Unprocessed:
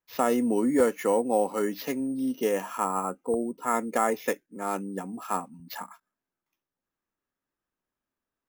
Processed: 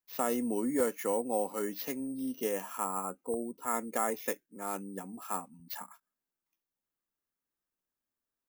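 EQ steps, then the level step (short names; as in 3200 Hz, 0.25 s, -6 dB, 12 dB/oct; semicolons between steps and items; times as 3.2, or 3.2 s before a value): high shelf 4900 Hz +5 dB; high shelf 11000 Hz +7 dB; -7.5 dB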